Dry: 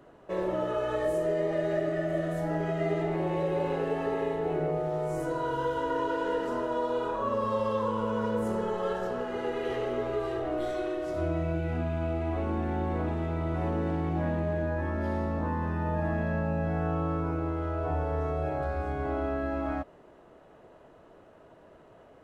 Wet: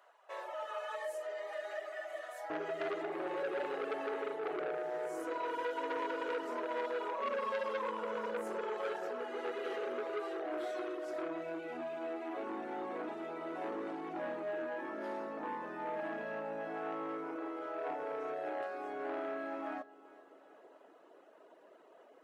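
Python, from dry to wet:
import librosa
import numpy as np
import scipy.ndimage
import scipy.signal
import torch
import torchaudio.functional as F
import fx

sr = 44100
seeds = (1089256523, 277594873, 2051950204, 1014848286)

y = fx.highpass(x, sr, hz=fx.steps((0.0, 720.0), (2.5, 300.0)), slope=24)
y = fx.dereverb_blind(y, sr, rt60_s=0.75)
y = fx.echo_feedback(y, sr, ms=392, feedback_pct=52, wet_db=-20.0)
y = fx.transformer_sat(y, sr, knee_hz=1500.0)
y = F.gain(torch.from_numpy(y), -3.0).numpy()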